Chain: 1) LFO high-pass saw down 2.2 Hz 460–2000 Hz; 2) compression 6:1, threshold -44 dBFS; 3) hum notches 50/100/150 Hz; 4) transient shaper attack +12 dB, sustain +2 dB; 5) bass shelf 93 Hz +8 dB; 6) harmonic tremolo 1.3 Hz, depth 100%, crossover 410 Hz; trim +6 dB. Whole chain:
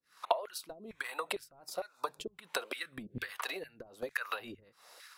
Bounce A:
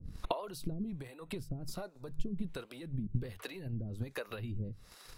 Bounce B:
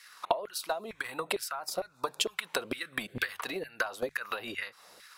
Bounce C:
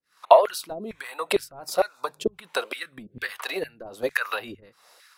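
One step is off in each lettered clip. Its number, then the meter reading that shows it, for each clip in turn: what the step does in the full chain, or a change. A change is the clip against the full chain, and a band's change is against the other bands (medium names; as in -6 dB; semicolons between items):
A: 1, 125 Hz band +23.5 dB; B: 6, momentary loudness spread change -9 LU; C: 2, mean gain reduction 9.5 dB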